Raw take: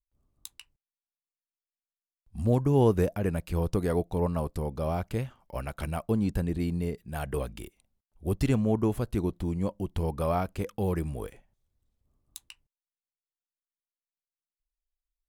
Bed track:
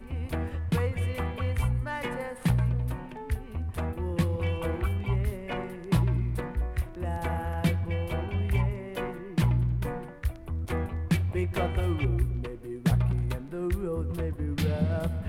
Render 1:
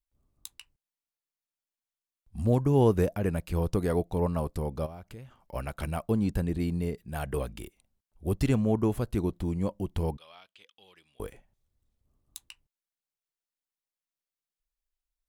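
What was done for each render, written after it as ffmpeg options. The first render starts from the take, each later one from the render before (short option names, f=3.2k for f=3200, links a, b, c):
-filter_complex "[0:a]asplit=3[a][b][c];[a]afade=t=out:st=4.85:d=0.02[d];[b]acompressor=threshold=-45dB:ratio=3:attack=3.2:release=140:knee=1:detection=peak,afade=t=in:st=4.85:d=0.02,afade=t=out:st=5.41:d=0.02[e];[c]afade=t=in:st=5.41:d=0.02[f];[d][e][f]amix=inputs=3:normalize=0,asettb=1/sr,asplit=3[g][h][i];[g]atrim=end=10.174[j];[h]atrim=start=10.17:end=11.2,asetpts=PTS-STARTPTS,afade=t=in:d=0.004:c=qsin,afade=t=out:st=1.026:d=0.004:c=qsin,bandpass=f=3.3k:t=q:w=4.7[k];[i]atrim=start=11.196[l];[j][k]acrossfade=d=0.004:c1=hsin:c2=qsin[m];[m][l]acrossfade=d=0.004:c1=qsin:c2=hsin"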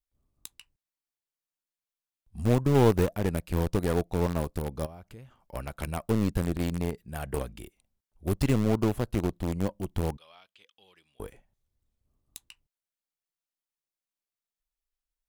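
-filter_complex "[0:a]asplit=2[a][b];[b]acrusher=bits=3:mix=0:aa=0.000001,volume=-11dB[c];[a][c]amix=inputs=2:normalize=0,aeval=exprs='0.376*(cos(1*acos(clip(val(0)/0.376,-1,1)))-cos(1*PI/2))+0.0299*(cos(3*acos(clip(val(0)/0.376,-1,1)))-cos(3*PI/2))+0.015*(cos(8*acos(clip(val(0)/0.376,-1,1)))-cos(8*PI/2))':c=same"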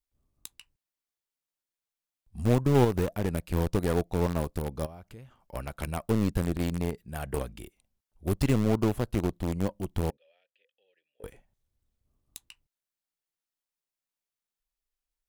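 -filter_complex "[0:a]asettb=1/sr,asplit=3[a][b][c];[a]atrim=end=2.844[d];[b]atrim=start=2.84:end=3.48,asetpts=PTS-STARTPTS,afade=t=in:d=0.004:c=qsin,afade=t=out:st=0.636:d=0.004:c=qsin,acompressor=threshold=-21dB:ratio=3:attack=3.2:release=140:knee=1:detection=peak[e];[c]atrim=start=3.476[f];[d][e]acrossfade=d=0.004:c1=hsin:c2=qsin[g];[g][f]acrossfade=d=0.004:c1=qsin:c2=hsin,asettb=1/sr,asplit=3[h][i][j];[h]atrim=end=10.104[k];[i]atrim=start=10.1:end=11.24,asetpts=PTS-STARTPTS,afade=t=in:d=0.004:c=qsin,afade=t=out:st=1.136:d=0.004:c=qsin,asplit=3[l][m][n];[l]bandpass=f=530:t=q:w=8,volume=0dB[o];[m]bandpass=f=1.84k:t=q:w=8,volume=-6dB[p];[n]bandpass=f=2.48k:t=q:w=8,volume=-9dB[q];[o][p][q]amix=inputs=3:normalize=0[r];[j]atrim=start=11.236[s];[k][r]acrossfade=d=0.004:c1=hsin:c2=qsin[t];[t][s]acrossfade=d=0.004:c1=qsin:c2=hsin"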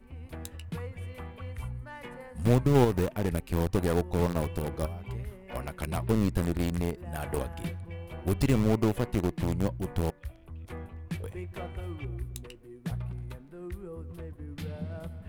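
-filter_complex "[1:a]volume=-10.5dB[a];[0:a][a]amix=inputs=2:normalize=0"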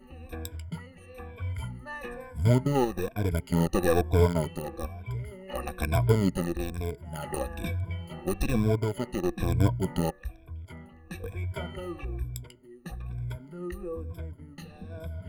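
-af "afftfilt=real='re*pow(10,21/40*sin(2*PI*(1.7*log(max(b,1)*sr/1024/100)/log(2)-(-1.1)*(pts-256)/sr)))':imag='im*pow(10,21/40*sin(2*PI*(1.7*log(max(b,1)*sr/1024/100)/log(2)-(-1.1)*(pts-256)/sr)))':win_size=1024:overlap=0.75,tremolo=f=0.51:d=0.55"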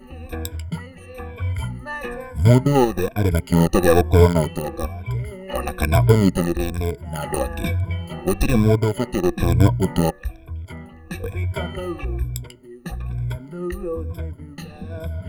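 -af "volume=9dB,alimiter=limit=-1dB:level=0:latency=1"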